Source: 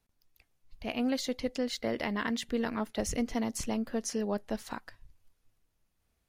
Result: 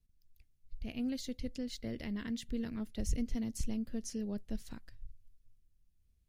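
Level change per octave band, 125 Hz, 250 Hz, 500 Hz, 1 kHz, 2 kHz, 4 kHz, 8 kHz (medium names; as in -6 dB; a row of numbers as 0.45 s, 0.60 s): +0.5 dB, -4.5 dB, -12.5 dB, -19.0 dB, -13.0 dB, -9.0 dB, -7.5 dB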